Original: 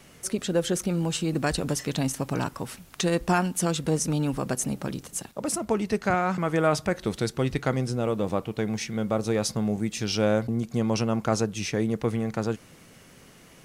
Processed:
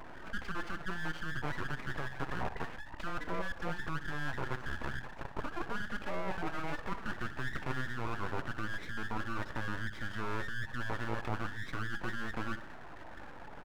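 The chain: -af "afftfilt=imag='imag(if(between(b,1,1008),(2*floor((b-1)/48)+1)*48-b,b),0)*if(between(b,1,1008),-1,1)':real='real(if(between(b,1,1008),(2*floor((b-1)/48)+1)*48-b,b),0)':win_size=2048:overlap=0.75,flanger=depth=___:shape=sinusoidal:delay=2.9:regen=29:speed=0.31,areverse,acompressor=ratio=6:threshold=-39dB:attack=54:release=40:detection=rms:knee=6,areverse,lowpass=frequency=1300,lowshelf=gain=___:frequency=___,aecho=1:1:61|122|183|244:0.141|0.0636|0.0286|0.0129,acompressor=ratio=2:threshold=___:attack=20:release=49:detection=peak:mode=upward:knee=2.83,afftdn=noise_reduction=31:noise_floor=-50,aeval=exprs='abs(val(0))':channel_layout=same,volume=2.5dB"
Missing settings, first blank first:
5.3, 11, 160, -39dB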